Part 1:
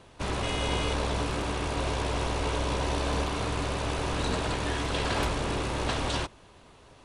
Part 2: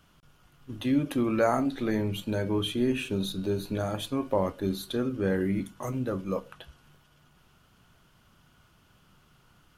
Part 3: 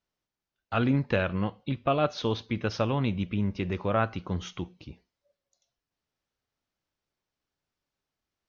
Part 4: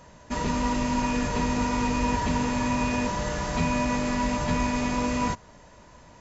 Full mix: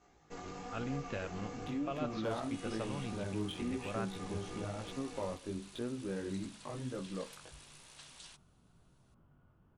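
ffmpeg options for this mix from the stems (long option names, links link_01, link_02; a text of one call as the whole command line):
ffmpeg -i stem1.wav -i stem2.wav -i stem3.wav -i stem4.wav -filter_complex "[0:a]aderivative,adelay=2100,volume=-13.5dB[link_01];[1:a]adynamicsmooth=sensitivity=5.5:basefreq=890,adelay=850,volume=0dB[link_02];[2:a]volume=-14.5dB[link_03];[3:a]aeval=exprs='val(0)*sin(2*PI*230*n/s)':channel_layout=same,flanger=delay=16.5:depth=5.2:speed=1.1,volume=-6.5dB[link_04];[link_02][link_04]amix=inputs=2:normalize=0,flanger=delay=15:depth=7.4:speed=1,acompressor=threshold=-44dB:ratio=2,volume=0dB[link_05];[link_01][link_03][link_05]amix=inputs=3:normalize=0" out.wav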